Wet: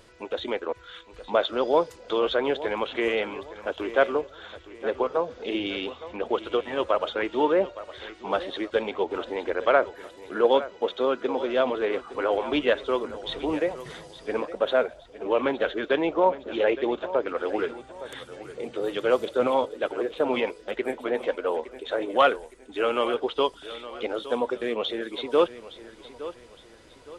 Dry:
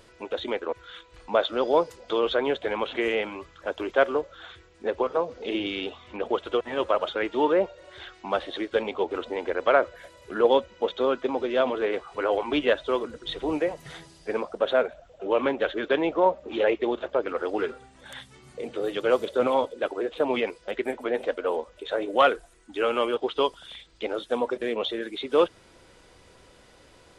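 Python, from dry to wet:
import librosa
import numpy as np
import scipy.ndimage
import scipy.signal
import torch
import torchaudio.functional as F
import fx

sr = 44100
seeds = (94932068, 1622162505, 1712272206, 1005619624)

y = fx.highpass(x, sr, hz=130.0, slope=6, at=(9.9, 11.49))
y = fx.echo_feedback(y, sr, ms=864, feedback_pct=36, wet_db=-15)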